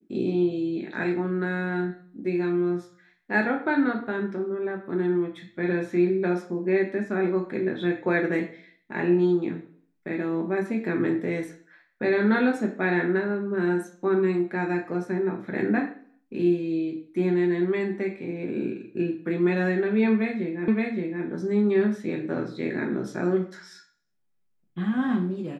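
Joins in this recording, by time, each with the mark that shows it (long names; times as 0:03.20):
0:20.68: the same again, the last 0.57 s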